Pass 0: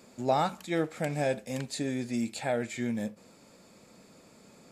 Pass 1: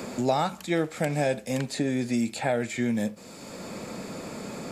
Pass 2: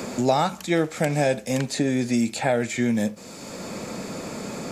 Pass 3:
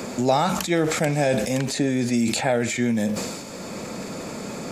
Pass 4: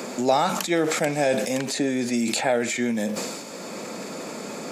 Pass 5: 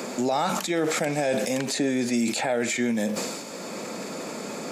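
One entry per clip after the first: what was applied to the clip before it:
three bands compressed up and down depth 70%; trim +4.5 dB
peaking EQ 6.1 kHz +4.5 dB 0.35 oct; trim +4 dB
decay stretcher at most 40 dB/s
high-pass 230 Hz 12 dB/octave
peak limiter -15.5 dBFS, peak gain reduction 7.5 dB

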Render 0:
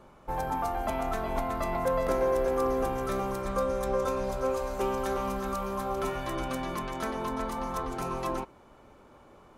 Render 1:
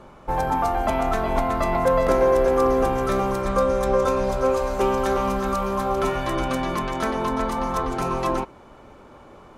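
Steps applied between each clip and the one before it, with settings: treble shelf 11 kHz -10 dB; trim +8.5 dB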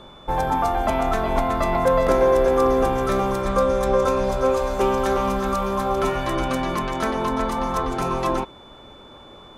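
whistle 3.5 kHz -49 dBFS; trim +1 dB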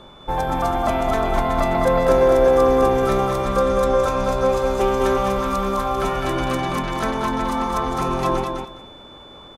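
feedback delay 206 ms, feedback 18%, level -5 dB

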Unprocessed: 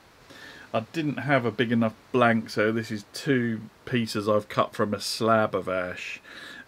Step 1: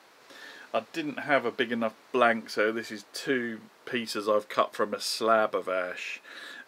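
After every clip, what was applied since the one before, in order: high-pass 340 Hz 12 dB/octave; trim -1 dB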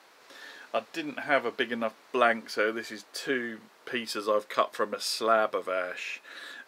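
bass shelf 220 Hz -8 dB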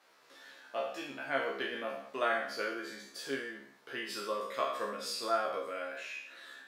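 spectral sustain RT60 0.72 s; feedback comb 68 Hz, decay 0.25 s, harmonics all, mix 100%; trim -2.5 dB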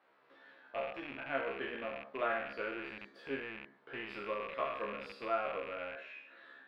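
rattle on loud lows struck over -57 dBFS, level -27 dBFS; distance through air 470 m; trim -1 dB

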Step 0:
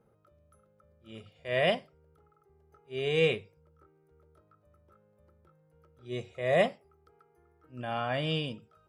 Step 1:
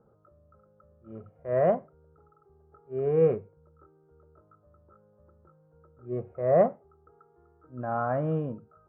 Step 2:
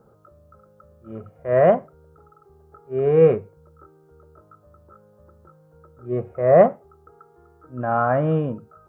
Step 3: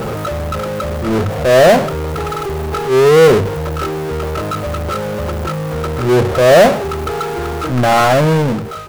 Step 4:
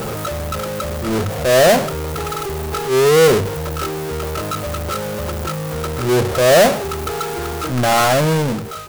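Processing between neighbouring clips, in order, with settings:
Chebyshev low-pass 1.4 kHz, order 4; trim +4.5 dB
treble shelf 2.1 kHz +9 dB; trim +7.5 dB
fade out at the end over 1.43 s; power-law waveshaper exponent 0.35
treble shelf 4.1 kHz +10.5 dB; trim -4 dB

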